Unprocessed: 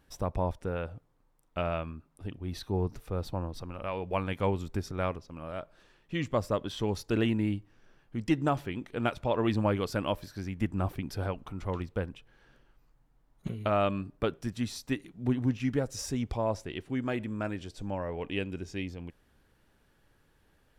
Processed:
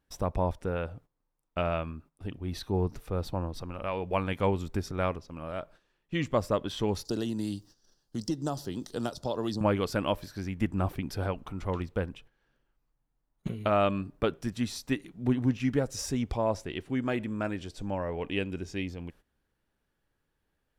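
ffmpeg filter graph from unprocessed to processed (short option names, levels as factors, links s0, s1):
-filter_complex "[0:a]asettb=1/sr,asplit=3[s0][s1][s2];[s0]atrim=end=7.054[s3];[s1]atrim=start=7.05:end=9.61,asetpts=PTS-STARTPTS,afade=t=in:d=0.004:c=qsin,afade=t=out:st=2.556:d=0.004:c=qsin,highshelf=f=3400:t=q:w=3:g=13,bandreject=f=2300:w=8.1,acrossover=split=98|990[s4][s5][s6];[s4]acompressor=threshold=0.00224:ratio=4[s7];[s5]acompressor=threshold=0.0282:ratio=4[s8];[s6]acompressor=threshold=0.00562:ratio=4[s9];[s7][s8][s9]amix=inputs=3:normalize=0[s10];[s2]atrim=start=9.606[s11];[s3][s10]acrossfade=d=0.004:c1=hsin:c2=qsin[s12];[s12][s11]acrossfade=d=0.004:c1=qsin:c2=hsin,equalizer=f=110:t=o:w=0.29:g=-3,agate=range=0.2:threshold=0.002:ratio=16:detection=peak,volume=1.26"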